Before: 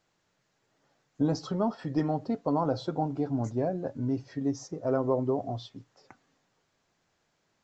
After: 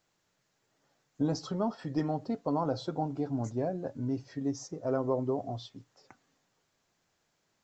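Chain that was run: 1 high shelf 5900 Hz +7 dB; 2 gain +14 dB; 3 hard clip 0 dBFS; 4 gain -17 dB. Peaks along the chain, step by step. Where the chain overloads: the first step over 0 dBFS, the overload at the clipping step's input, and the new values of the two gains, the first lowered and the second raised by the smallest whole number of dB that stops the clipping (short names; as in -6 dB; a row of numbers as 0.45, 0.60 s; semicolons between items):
-15.5, -1.5, -1.5, -18.5 dBFS; no overload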